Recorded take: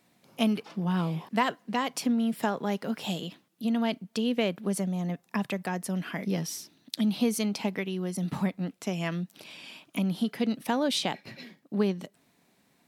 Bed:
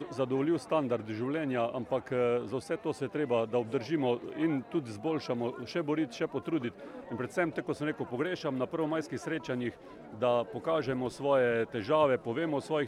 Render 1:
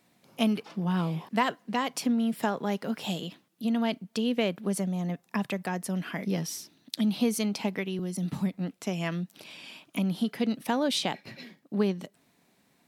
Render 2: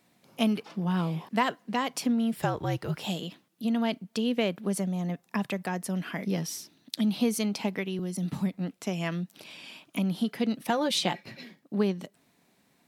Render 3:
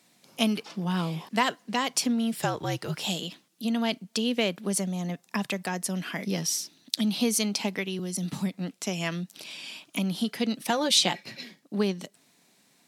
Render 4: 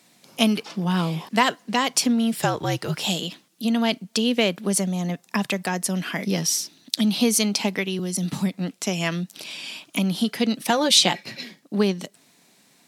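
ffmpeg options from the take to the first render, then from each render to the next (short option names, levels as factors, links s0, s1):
-filter_complex "[0:a]asettb=1/sr,asplit=3[s0][s1][s2];[s0]atrim=end=7.994[s3];[s1]atrim=start=7.99:end=8.54,asetpts=PTS-STARTPTS,afade=t=in:d=0.004:c=qsin,afade=t=out:st=0.546:d=0.004:c=qsin,acrossover=split=400|3000[s4][s5][s6];[s5]acompressor=threshold=0.00398:ratio=2.5:attack=3.2:release=140:knee=2.83:detection=peak[s7];[s4][s7][s6]amix=inputs=3:normalize=0[s8];[s2]atrim=start=8.536[s9];[s3][s8]acrossfade=d=0.004:c1=hsin:c2=qsin[s10];[s10][s9]acrossfade=d=0.004:c1=qsin:c2=hsin"
-filter_complex "[0:a]asettb=1/sr,asplit=3[s0][s1][s2];[s0]atrim=end=2.364[s3];[s1]atrim=start=2.36:end=2.97,asetpts=PTS-STARTPTS,afade=t=in:d=0.004:c=qsin,afade=t=out:st=0.606:d=0.004:c=qsin,afreqshift=-68[s4];[s2]atrim=start=2.966[s5];[s3][s4]acrossfade=d=0.004:c1=hsin:c2=qsin[s6];[s6][s5]acrossfade=d=0.004:c1=qsin:c2=hsin,asettb=1/sr,asplit=3[s7][s8][s9];[s7]atrim=end=10.694[s10];[s8]atrim=start=10.69:end=11.24,asetpts=PTS-STARTPTS,afade=t=in:d=0.004:c=qsin,afade=t=out:st=0.546:d=0.004:c=qsin,aecho=1:1:5.7:0.65,atrim=end_sample=24255[s11];[s9]atrim=start=11.236[s12];[s10][s11]acrossfade=d=0.004:c1=hsin:c2=qsin[s13];[s13][s12]acrossfade=d=0.004:c1=qsin:c2=hsin"
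-af "highpass=120,equalizer=f=6600:w=0.46:g=9.5"
-af "volume=1.88,alimiter=limit=0.891:level=0:latency=1"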